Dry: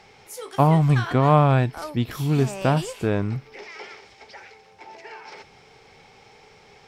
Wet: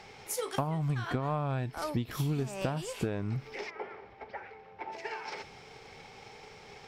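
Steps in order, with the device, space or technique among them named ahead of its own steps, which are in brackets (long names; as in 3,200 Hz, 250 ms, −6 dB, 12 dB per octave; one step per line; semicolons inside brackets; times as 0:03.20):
drum-bus smash (transient designer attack +6 dB, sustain +1 dB; downward compressor 12 to 1, threshold −27 dBFS, peak gain reduction 19.5 dB; soft clipping −19 dBFS, distortion −20 dB)
0:03.69–0:04.91: low-pass filter 1,100 Hz → 2,200 Hz 12 dB per octave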